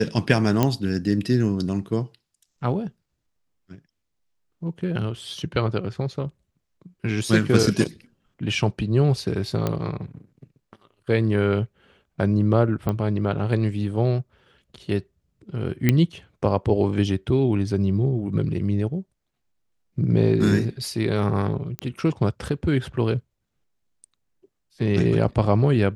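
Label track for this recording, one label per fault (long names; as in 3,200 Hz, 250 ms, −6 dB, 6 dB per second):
0.630000	0.630000	click −6 dBFS
9.670000	9.670000	click −11 dBFS
12.890000	12.890000	click −13 dBFS
15.890000	15.890000	click −5 dBFS
21.790000	21.790000	click −13 dBFS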